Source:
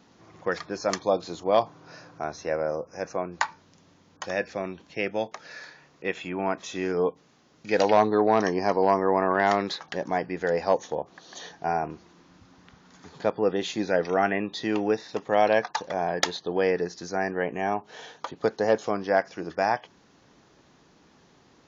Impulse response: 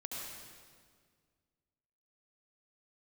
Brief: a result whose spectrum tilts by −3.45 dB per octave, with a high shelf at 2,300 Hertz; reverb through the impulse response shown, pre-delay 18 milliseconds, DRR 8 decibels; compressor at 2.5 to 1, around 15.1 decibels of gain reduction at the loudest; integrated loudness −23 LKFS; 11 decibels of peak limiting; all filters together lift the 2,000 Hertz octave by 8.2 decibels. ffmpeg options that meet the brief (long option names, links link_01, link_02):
-filter_complex "[0:a]equalizer=frequency=2000:width_type=o:gain=8,highshelf=frequency=2300:gain=4.5,acompressor=threshold=-38dB:ratio=2.5,alimiter=level_in=1dB:limit=-24dB:level=0:latency=1,volume=-1dB,asplit=2[link_01][link_02];[1:a]atrim=start_sample=2205,adelay=18[link_03];[link_02][link_03]afir=irnorm=-1:irlink=0,volume=-8dB[link_04];[link_01][link_04]amix=inputs=2:normalize=0,volume=15.5dB"